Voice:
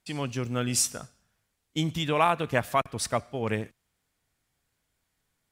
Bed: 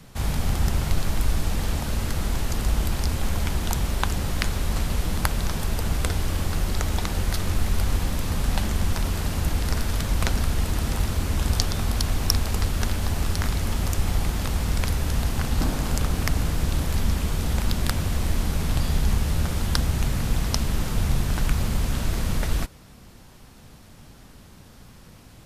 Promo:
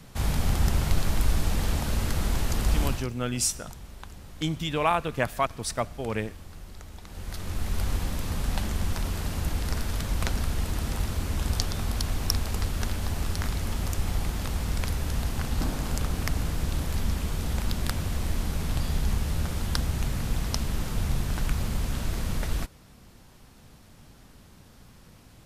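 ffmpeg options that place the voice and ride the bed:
-filter_complex "[0:a]adelay=2650,volume=-1dB[a];[1:a]volume=13.5dB,afade=t=out:st=2.84:d=0.24:silence=0.125893,afade=t=in:st=7.04:d=0.8:silence=0.188365[b];[a][b]amix=inputs=2:normalize=0"

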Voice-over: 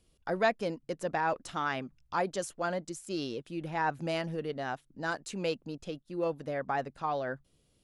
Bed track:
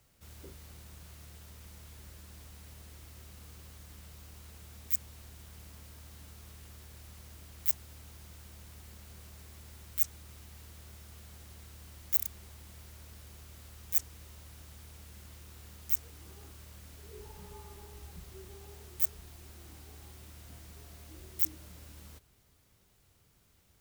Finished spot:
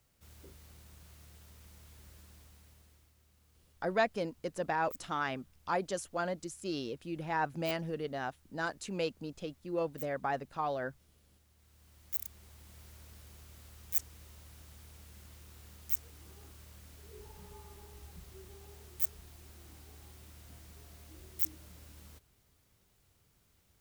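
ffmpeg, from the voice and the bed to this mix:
-filter_complex "[0:a]adelay=3550,volume=-2dB[a];[1:a]volume=9dB,afade=t=out:st=2.2:d=0.94:silence=0.251189,afade=t=in:st=11.55:d=1.31:silence=0.199526[b];[a][b]amix=inputs=2:normalize=0"

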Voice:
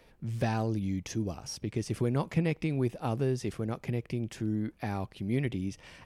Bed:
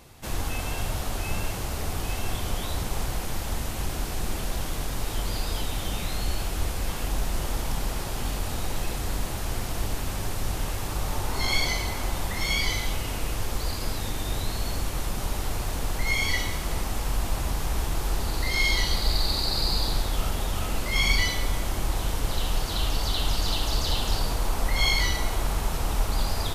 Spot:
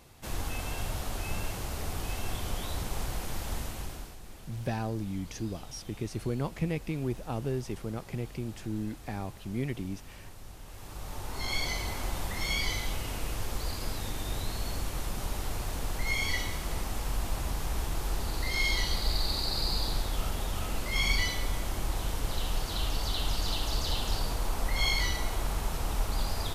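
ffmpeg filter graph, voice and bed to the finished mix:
-filter_complex "[0:a]adelay=4250,volume=-3dB[a];[1:a]volume=8.5dB,afade=t=out:st=3.57:d=0.61:silence=0.211349,afade=t=in:st=10.64:d=1.28:silence=0.211349[b];[a][b]amix=inputs=2:normalize=0"

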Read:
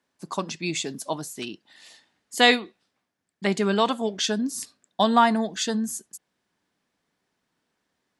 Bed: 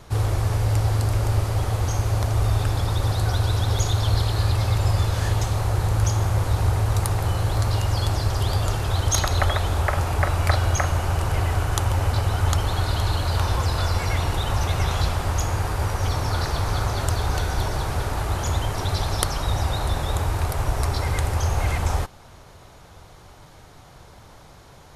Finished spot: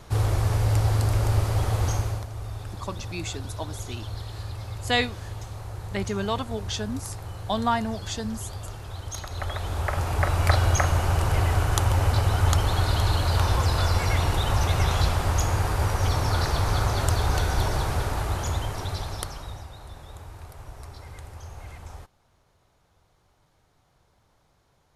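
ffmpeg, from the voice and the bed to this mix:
-filter_complex "[0:a]adelay=2500,volume=-6dB[a];[1:a]volume=13dB,afade=t=out:st=1.9:d=0.36:silence=0.223872,afade=t=in:st=9.28:d=1.29:silence=0.199526,afade=t=out:st=17.75:d=1.93:silence=0.11885[b];[a][b]amix=inputs=2:normalize=0"

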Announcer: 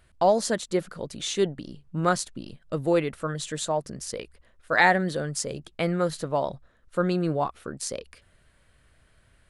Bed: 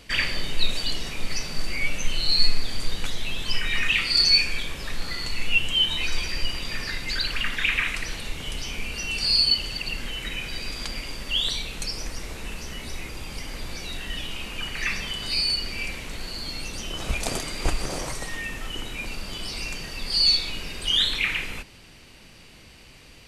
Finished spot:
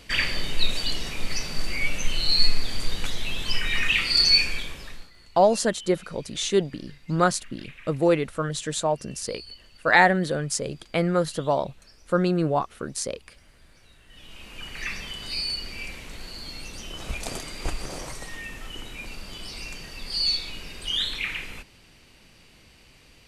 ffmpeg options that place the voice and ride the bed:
-filter_complex "[0:a]adelay=5150,volume=2.5dB[a];[1:a]volume=18.5dB,afade=t=out:st=4.44:d=0.67:silence=0.0668344,afade=t=in:st=14.06:d=0.75:silence=0.11885[b];[a][b]amix=inputs=2:normalize=0"

